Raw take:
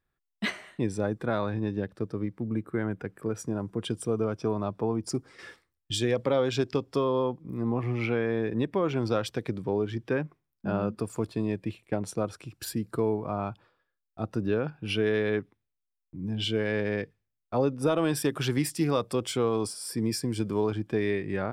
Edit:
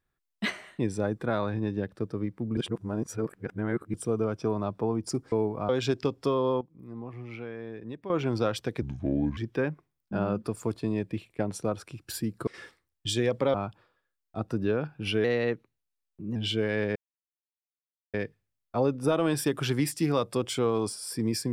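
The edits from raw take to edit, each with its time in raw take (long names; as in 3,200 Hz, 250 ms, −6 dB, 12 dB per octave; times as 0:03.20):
0:02.57–0:03.94: reverse
0:05.32–0:06.39: swap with 0:13.00–0:13.37
0:07.31–0:08.80: clip gain −11.5 dB
0:09.52–0:09.90: play speed 69%
0:15.07–0:16.32: play speed 112%
0:16.92: splice in silence 1.18 s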